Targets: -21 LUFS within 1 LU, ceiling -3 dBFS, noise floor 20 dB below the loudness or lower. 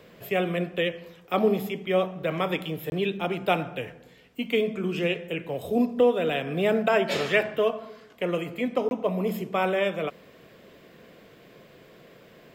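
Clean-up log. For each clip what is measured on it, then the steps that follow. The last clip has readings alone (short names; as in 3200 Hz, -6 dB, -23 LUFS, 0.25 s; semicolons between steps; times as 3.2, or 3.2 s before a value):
dropouts 2; longest dropout 21 ms; loudness -26.5 LUFS; peak -10.5 dBFS; loudness target -21.0 LUFS
-> interpolate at 2.9/8.89, 21 ms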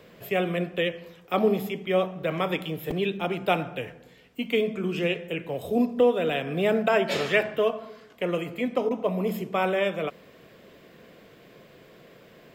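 dropouts 0; loudness -26.5 LUFS; peak -10.5 dBFS; loudness target -21.0 LUFS
-> gain +5.5 dB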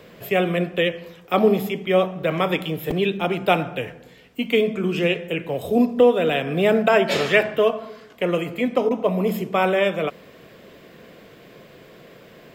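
loudness -21.0 LUFS; peak -5.0 dBFS; noise floor -48 dBFS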